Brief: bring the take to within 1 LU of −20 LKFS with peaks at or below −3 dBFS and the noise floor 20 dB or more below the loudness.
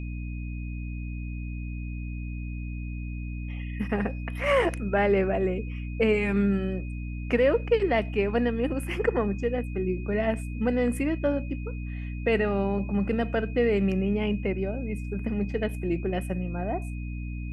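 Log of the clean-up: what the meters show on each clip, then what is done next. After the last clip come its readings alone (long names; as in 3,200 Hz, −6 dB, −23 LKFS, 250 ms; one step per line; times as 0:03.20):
mains hum 60 Hz; hum harmonics up to 300 Hz; level of the hum −31 dBFS; interfering tone 2,500 Hz; level of the tone −47 dBFS; integrated loudness −28.0 LKFS; sample peak −10.5 dBFS; target loudness −20.0 LKFS
→ mains-hum notches 60/120/180/240/300 Hz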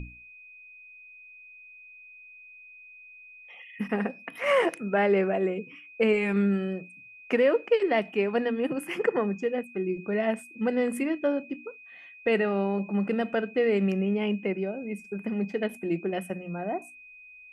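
mains hum none found; interfering tone 2,500 Hz; level of the tone −47 dBFS
→ notch filter 2,500 Hz, Q 30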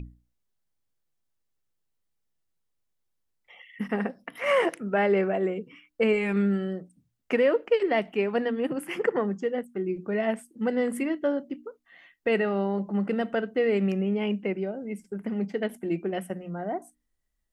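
interfering tone none found; integrated loudness −27.5 LKFS; sample peak −12.0 dBFS; target loudness −20.0 LKFS
→ level +7.5 dB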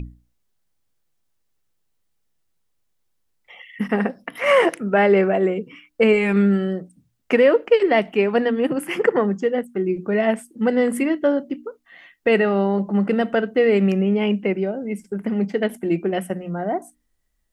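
integrated loudness −20.0 LKFS; sample peak −4.5 dBFS; background noise floor −70 dBFS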